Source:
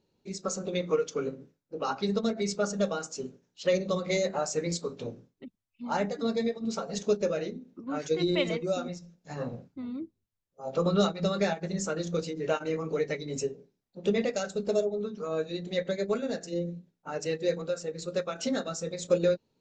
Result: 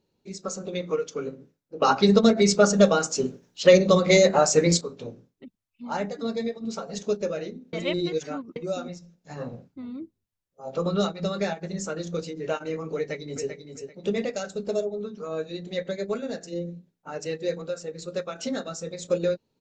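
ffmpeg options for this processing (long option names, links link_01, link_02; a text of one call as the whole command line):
ffmpeg -i in.wav -filter_complex "[0:a]asplit=2[link_01][link_02];[link_02]afade=type=in:start_time=12.97:duration=0.01,afade=type=out:start_time=13.5:duration=0.01,aecho=0:1:390|780|1170:0.421697|0.105424|0.026356[link_03];[link_01][link_03]amix=inputs=2:normalize=0,asplit=5[link_04][link_05][link_06][link_07][link_08];[link_04]atrim=end=1.822[link_09];[link_05]atrim=start=1.818:end=4.812,asetpts=PTS-STARTPTS,volume=11dB[link_10];[link_06]atrim=start=4.808:end=7.732[link_11];[link_07]atrim=start=7.728:end=8.562,asetpts=PTS-STARTPTS,areverse[link_12];[link_08]atrim=start=8.558[link_13];[link_09][link_10]acrossfade=duration=0.004:curve1=hsin:curve2=hsin[link_14];[link_14][link_11]acrossfade=duration=0.004:curve1=hsin:curve2=hsin[link_15];[link_15][link_12]acrossfade=duration=0.004:curve1=hsin:curve2=hsin[link_16];[link_16][link_13]acrossfade=duration=0.004:curve1=hsin:curve2=hsin" out.wav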